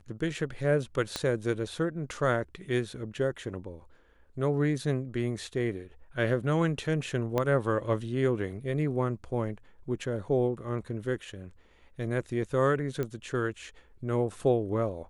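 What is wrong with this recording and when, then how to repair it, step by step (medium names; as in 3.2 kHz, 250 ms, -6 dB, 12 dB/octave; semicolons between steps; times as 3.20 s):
1.16 s: pop -16 dBFS
7.38 s: pop -15 dBFS
13.03 s: pop -20 dBFS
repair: de-click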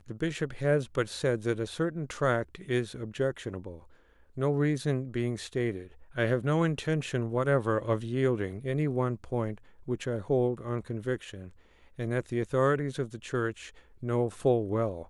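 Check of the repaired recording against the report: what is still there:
1.16 s: pop
7.38 s: pop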